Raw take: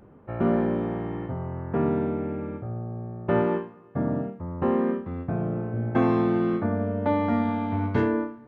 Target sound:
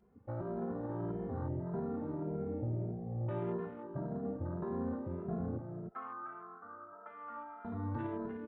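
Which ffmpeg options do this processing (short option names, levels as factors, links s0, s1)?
-filter_complex "[0:a]afwtdn=0.0178,asettb=1/sr,asplit=3[s0][s1][s2];[s0]atrim=end=5.584[s3];[s1]atrim=start=5.58:end=7.65,asetpts=PTS-STARTPTS,afade=t=in:d=0.004:c=qsin,afade=t=out:st=2.066:d=0.004:c=qsin,bandpass=f=1300:t=q:w=13:csg=0[s4];[s2]atrim=start=7.646[s5];[s3][s4]acrossfade=d=0.004:c1=hsin:c2=qsin[s6];[s6][s5]acrossfade=d=0.004:c1=qsin:c2=hsin,acompressor=threshold=0.0355:ratio=6,alimiter=level_in=2.37:limit=0.0631:level=0:latency=1:release=31,volume=0.422,asplit=2[s7][s8];[s8]adelay=303.2,volume=0.501,highshelf=f=4000:g=-6.82[s9];[s7][s9]amix=inputs=2:normalize=0,asplit=2[s10][s11];[s11]adelay=2.5,afreqshift=1.7[s12];[s10][s12]amix=inputs=2:normalize=1,volume=1.33"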